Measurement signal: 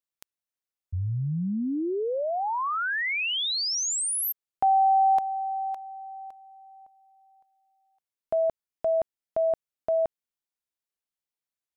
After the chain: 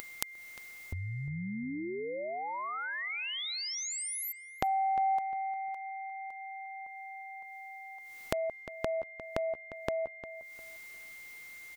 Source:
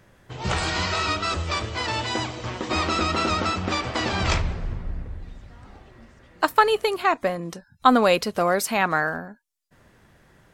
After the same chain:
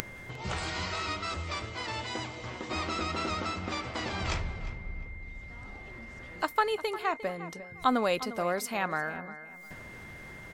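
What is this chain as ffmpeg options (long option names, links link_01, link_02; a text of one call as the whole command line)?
ffmpeg -i in.wav -filter_complex "[0:a]acompressor=mode=upward:threshold=-30dB:ratio=4:attack=21:release=251:knee=2.83:detection=peak,aeval=exprs='val(0)+0.0158*sin(2*PI*2100*n/s)':channel_layout=same,asplit=2[link_01][link_02];[link_02]adelay=353,lowpass=frequency=3100:poles=1,volume=-14dB,asplit=2[link_03][link_04];[link_04]adelay=353,lowpass=frequency=3100:poles=1,volume=0.28,asplit=2[link_05][link_06];[link_06]adelay=353,lowpass=frequency=3100:poles=1,volume=0.28[link_07];[link_03][link_05][link_07]amix=inputs=3:normalize=0[link_08];[link_01][link_08]amix=inputs=2:normalize=0,volume=-9.5dB" out.wav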